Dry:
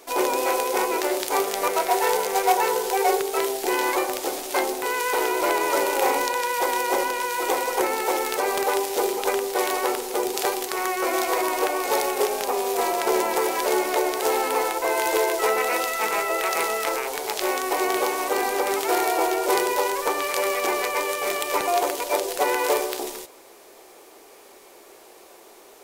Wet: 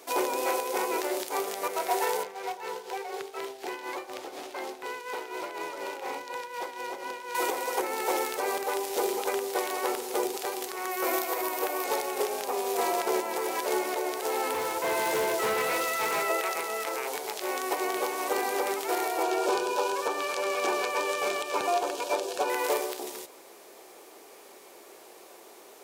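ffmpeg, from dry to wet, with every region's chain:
ffmpeg -i in.wav -filter_complex "[0:a]asettb=1/sr,asplit=3[link_01][link_02][link_03];[link_01]atrim=end=2.234[link_04];[link_02]atrim=start=2.23:end=7.35,asetpts=PTS-STARTPTS,afade=type=in:duration=0.004:curve=qsin,afade=type=out:start_time=5.116:duration=0.004:curve=qsin,tremolo=f=4.1:d=0.69,acrossover=split=170|900|2800|6000[link_05][link_06][link_07][link_08][link_09];[link_05]acompressor=threshold=-55dB:ratio=3[link_10];[link_06]acompressor=threshold=-38dB:ratio=3[link_11];[link_07]acompressor=threshold=-39dB:ratio=3[link_12];[link_08]acompressor=threshold=-43dB:ratio=3[link_13];[link_09]acompressor=threshold=-48dB:ratio=3[link_14];[link_10][link_11][link_12][link_13][link_14]amix=inputs=5:normalize=0,highshelf=frequency=4700:gain=-7.5[link_15];[link_03]atrim=start=7.346[link_16];[link_04][link_15]acrossfade=duration=0.004:curve1=hsin:curve2=qsin[link_17];[link_17][link_16]acrossfade=duration=0.004:curve1=qsin:curve2=hsin,asettb=1/sr,asplit=3[link_18][link_19][link_20];[link_18]atrim=end=10.914[link_21];[link_19]atrim=start=10.91:end=11.84,asetpts=PTS-STARTPTS,afade=type=in:duration=0.004:curve=qsin,afade=type=out:start_time=0.926:duration=0.004:curve=qsin,equalizer=frequency=14000:width=1.7:gain=10,acrusher=bits=8:mode=log:mix=0:aa=0.000001[link_22];[link_20]atrim=start=11.836[link_23];[link_21][link_22]acrossfade=duration=0.004:curve1=hsin:curve2=qsin[link_24];[link_24][link_23]acrossfade=duration=0.004:curve1=qsin:curve2=hsin,asettb=1/sr,asplit=3[link_25][link_26][link_27];[link_25]atrim=end=14.534[link_28];[link_26]atrim=start=14.53:end=16.29,asetpts=PTS-STARTPTS,afade=type=in:duration=0.004:curve=qsin,afade=type=out:start_time=1.756:duration=0.004:curve=qsin,bandreject=frequency=750:width=16,asoftclip=type=hard:threshold=-22.5dB[link_29];[link_27]atrim=start=16.286[link_30];[link_28][link_29]acrossfade=duration=0.004:curve1=hsin:curve2=qsin[link_31];[link_31][link_30]acrossfade=duration=0.004:curve1=qsin:curve2=hsin,asettb=1/sr,asplit=3[link_32][link_33][link_34];[link_32]atrim=end=19.234[link_35];[link_33]atrim=start=19.23:end=22.5,asetpts=PTS-STARTPTS,afade=type=in:duration=0.004:curve=qsin,afade=type=out:start_time=3.266:duration=0.004:curve=qsin,acrossover=split=8300[link_36][link_37];[link_37]acompressor=threshold=-45dB:ratio=4:attack=1:release=60[link_38];[link_36][link_38]amix=inputs=2:normalize=0,asuperstop=centerf=2000:order=8:qfactor=6.5[link_39];[link_34]atrim=start=22.496[link_40];[link_35][link_39]acrossfade=duration=0.004:curve1=hsin:curve2=qsin[link_41];[link_41][link_40]acrossfade=duration=0.004:curve1=qsin:curve2=hsin,highpass=110,alimiter=limit=-14.5dB:level=0:latency=1:release=401,volume=-2dB" out.wav

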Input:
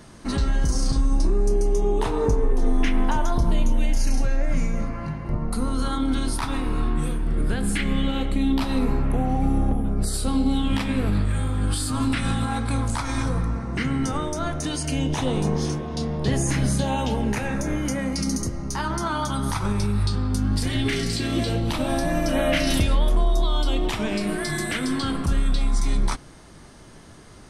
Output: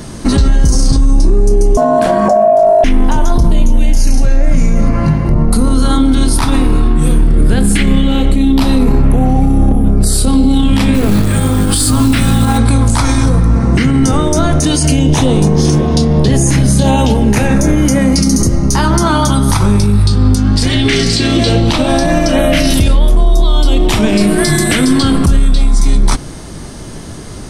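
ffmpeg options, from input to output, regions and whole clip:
ffmpeg -i in.wav -filter_complex "[0:a]asettb=1/sr,asplit=3[link_01][link_02][link_03];[link_01]atrim=end=1.774[link_04];[link_02]atrim=start=1.77:end=2.84,asetpts=PTS-STARTPTS,afade=type=in:duration=0.004:curve=qsin,afade=type=out:start_time=1.066:duration=0.004:curve=qsin,asubboost=boost=8.5:cutoff=110,aeval=exprs='val(0)*sin(2*PI*660*n/s)':channel_layout=same[link_05];[link_03]atrim=start=2.836[link_06];[link_04][link_05]acrossfade=duration=0.004:curve1=hsin:curve2=qsin[link_07];[link_07][link_06]acrossfade=duration=0.004:curve1=qsin:curve2=hsin,asettb=1/sr,asplit=3[link_08][link_09][link_10];[link_08]atrim=end=10.944[link_11];[link_09]atrim=start=10.94:end=12.58,asetpts=PTS-STARTPTS,afade=type=in:duration=0.004:curve=qsin,afade=type=out:start_time=1.636:duration=0.004:curve=qsin,bandreject=frequency=50:width_type=h:width=6,bandreject=frequency=100:width_type=h:width=6,bandreject=frequency=150:width_type=h:width=6,bandreject=frequency=200:width_type=h:width=6,bandreject=frequency=250:width_type=h:width=6,bandreject=frequency=300:width_type=h:width=6,acrusher=bits=5:mode=log:mix=0:aa=0.000001[link_12];[link_10]atrim=start=12.576[link_13];[link_11][link_12]acrossfade=duration=0.004:curve1=hsin:curve2=qsin[link_14];[link_14][link_13]acrossfade=duration=0.004:curve1=qsin:curve2=hsin,asettb=1/sr,asplit=3[link_15][link_16][link_17];[link_15]atrim=end=20.354[link_18];[link_16]atrim=start=20.35:end=22.39,asetpts=PTS-STARTPTS,afade=type=in:duration=0.004:curve=qsin,afade=type=out:start_time=2.036:duration=0.004:curve=qsin,lowpass=6500,lowshelf=frequency=410:gain=-7[link_19];[link_17]atrim=start=22.386[link_20];[link_18][link_19]acrossfade=duration=0.004:curve1=hsin:curve2=qsin[link_21];[link_21][link_20]acrossfade=duration=0.004:curve1=qsin:curve2=hsin,equalizer=frequency=1500:width_type=o:width=2.7:gain=-6.5,alimiter=level_in=21dB:limit=-1dB:release=50:level=0:latency=1,volume=-1dB" out.wav

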